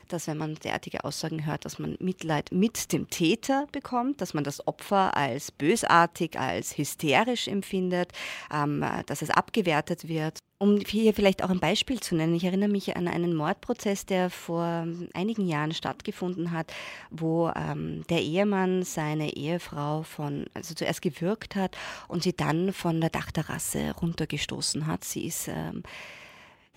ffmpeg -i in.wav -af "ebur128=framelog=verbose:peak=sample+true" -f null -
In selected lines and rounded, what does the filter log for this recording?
Integrated loudness:
  I:         -28.4 LUFS
  Threshold: -38.5 LUFS
Loudness range:
  LRA:         4.9 LU
  Threshold: -48.2 LUFS
  LRA low:   -30.8 LUFS
  LRA high:  -25.9 LUFS
Sample peak:
  Peak:       -5.5 dBFS
True peak:
  Peak:       -5.5 dBFS